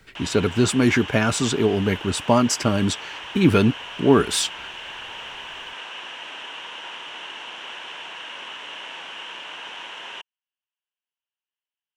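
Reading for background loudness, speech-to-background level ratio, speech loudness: −34.0 LKFS, 13.5 dB, −20.5 LKFS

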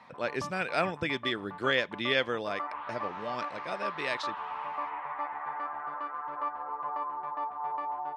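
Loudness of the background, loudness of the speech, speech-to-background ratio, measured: −37.5 LKFS, −32.5 LKFS, 5.0 dB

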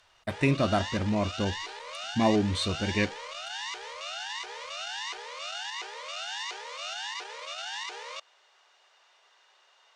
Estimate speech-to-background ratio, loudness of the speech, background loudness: 8.0 dB, −28.5 LKFS, −36.5 LKFS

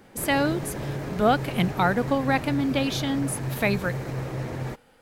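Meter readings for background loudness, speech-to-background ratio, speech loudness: −32.5 LKFS, 7.0 dB, −25.5 LKFS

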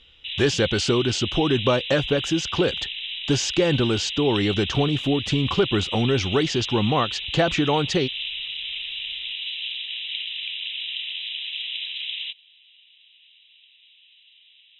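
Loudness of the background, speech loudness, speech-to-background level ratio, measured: −28.5 LKFS, −23.0 LKFS, 5.5 dB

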